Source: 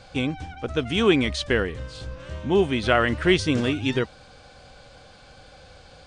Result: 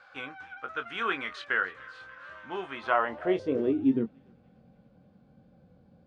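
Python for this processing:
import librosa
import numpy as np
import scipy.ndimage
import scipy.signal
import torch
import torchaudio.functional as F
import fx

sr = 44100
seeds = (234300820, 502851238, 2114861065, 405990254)

y = fx.wow_flutter(x, sr, seeds[0], rate_hz=2.1, depth_cents=16.0)
y = fx.doubler(y, sr, ms=22.0, db=-8.5)
y = fx.echo_thinned(y, sr, ms=291, feedback_pct=66, hz=1000.0, wet_db=-21.0)
y = fx.filter_sweep_bandpass(y, sr, from_hz=1400.0, to_hz=200.0, start_s=2.68, end_s=4.17, q=3.5)
y = y * 10.0 ** (3.5 / 20.0)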